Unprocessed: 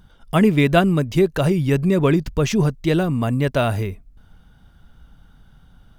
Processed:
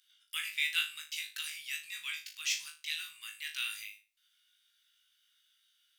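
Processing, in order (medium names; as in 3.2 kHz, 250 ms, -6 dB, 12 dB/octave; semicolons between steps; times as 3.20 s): inverse Chebyshev high-pass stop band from 680 Hz, stop band 60 dB; flutter echo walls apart 3.3 m, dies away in 0.31 s; trim -5 dB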